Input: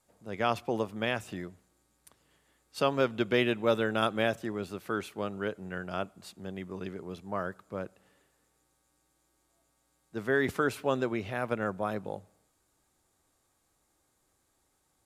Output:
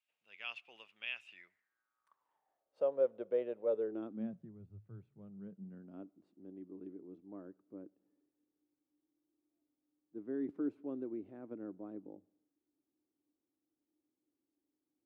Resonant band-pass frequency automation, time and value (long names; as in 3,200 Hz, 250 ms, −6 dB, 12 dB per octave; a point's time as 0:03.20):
resonant band-pass, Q 7.1
0:01.26 2,700 Hz
0:02.86 520 Hz
0:03.68 520 Hz
0:04.76 100 Hz
0:06.10 300 Hz